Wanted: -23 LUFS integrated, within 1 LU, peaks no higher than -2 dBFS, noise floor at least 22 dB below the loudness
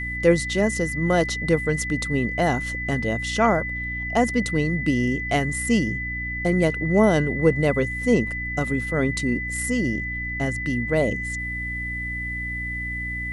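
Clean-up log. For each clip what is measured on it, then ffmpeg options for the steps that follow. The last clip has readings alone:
hum 60 Hz; harmonics up to 300 Hz; hum level -31 dBFS; steady tone 2000 Hz; tone level -28 dBFS; loudness -23.0 LUFS; peak -4.5 dBFS; loudness target -23.0 LUFS
-> -af "bandreject=f=60:t=h:w=6,bandreject=f=120:t=h:w=6,bandreject=f=180:t=h:w=6,bandreject=f=240:t=h:w=6,bandreject=f=300:t=h:w=6"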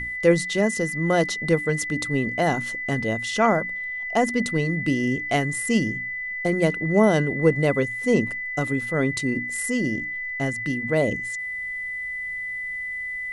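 hum none; steady tone 2000 Hz; tone level -28 dBFS
-> -af "bandreject=f=2k:w=30"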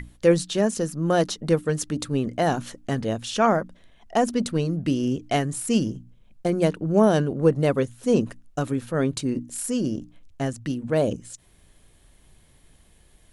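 steady tone none; loudness -24.5 LUFS; peak -6.0 dBFS; loudness target -23.0 LUFS
-> -af "volume=1.5dB"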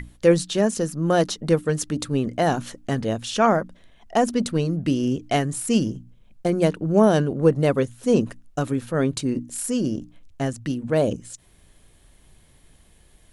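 loudness -23.0 LUFS; peak -4.5 dBFS; noise floor -56 dBFS

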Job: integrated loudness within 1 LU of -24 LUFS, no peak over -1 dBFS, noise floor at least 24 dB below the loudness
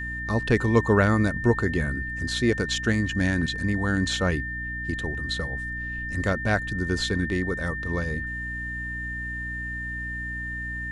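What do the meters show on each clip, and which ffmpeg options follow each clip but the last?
hum 60 Hz; harmonics up to 300 Hz; hum level -34 dBFS; steady tone 1800 Hz; tone level -31 dBFS; loudness -26.0 LUFS; peak -6.5 dBFS; loudness target -24.0 LUFS
-> -af "bandreject=f=60:t=h:w=6,bandreject=f=120:t=h:w=6,bandreject=f=180:t=h:w=6,bandreject=f=240:t=h:w=6,bandreject=f=300:t=h:w=6"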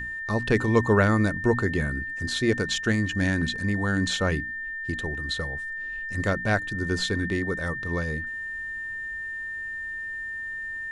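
hum none; steady tone 1800 Hz; tone level -31 dBFS
-> -af "bandreject=f=1.8k:w=30"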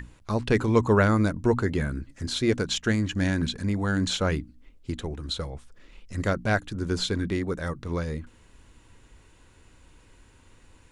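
steady tone none; loudness -26.5 LUFS; peak -7.5 dBFS; loudness target -24.0 LUFS
-> -af "volume=2.5dB"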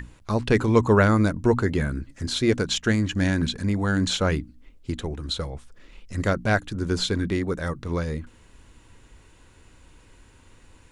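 loudness -24.0 LUFS; peak -5.0 dBFS; noise floor -54 dBFS

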